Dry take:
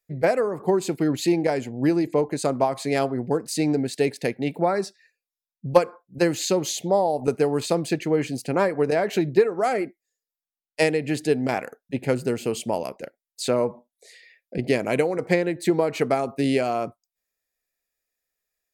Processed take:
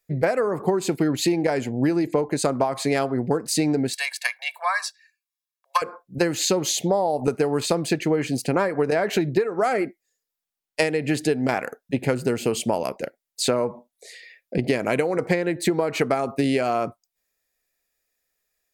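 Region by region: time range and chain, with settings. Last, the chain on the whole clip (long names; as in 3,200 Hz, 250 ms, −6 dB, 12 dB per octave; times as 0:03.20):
0:03.93–0:05.82: noise gate −46 dBFS, range −6 dB + Butterworth high-pass 830 Hz 48 dB per octave + comb filter 1.8 ms, depth 75%
whole clip: dynamic equaliser 1,400 Hz, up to +4 dB, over −36 dBFS, Q 1.4; downward compressor 6 to 1, threshold −24 dBFS; level +6 dB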